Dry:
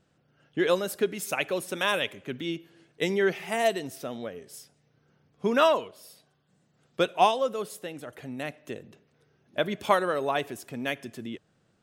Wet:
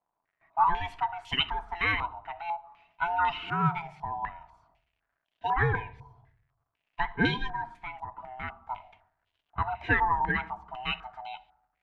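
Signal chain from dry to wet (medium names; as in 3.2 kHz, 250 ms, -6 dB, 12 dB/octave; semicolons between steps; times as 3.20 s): split-band scrambler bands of 500 Hz; gate with hold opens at -53 dBFS; crackle 220 per s -59 dBFS; reverberation RT60 0.70 s, pre-delay 7 ms, DRR 10.5 dB; step-sequenced low-pass 4 Hz 960–3100 Hz; trim -6 dB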